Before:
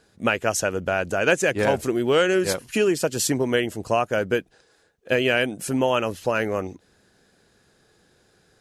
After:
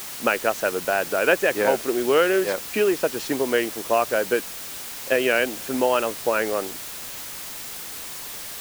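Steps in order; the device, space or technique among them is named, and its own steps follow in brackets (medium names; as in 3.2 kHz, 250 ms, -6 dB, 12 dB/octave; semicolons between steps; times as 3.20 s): wax cylinder (band-pass 300–2700 Hz; wow and flutter; white noise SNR 11 dB); trim +1.5 dB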